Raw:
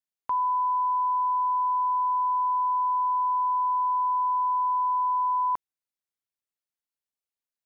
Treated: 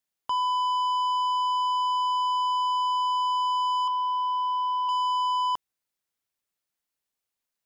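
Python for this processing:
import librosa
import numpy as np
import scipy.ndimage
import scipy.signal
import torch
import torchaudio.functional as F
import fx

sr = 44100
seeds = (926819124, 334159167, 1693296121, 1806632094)

y = fx.comb(x, sr, ms=6.6, depth=0.86, at=(3.87, 4.89))
y = 10.0 ** (-30.5 / 20.0) * np.tanh(y / 10.0 ** (-30.5 / 20.0))
y = y * 10.0 ** (6.5 / 20.0)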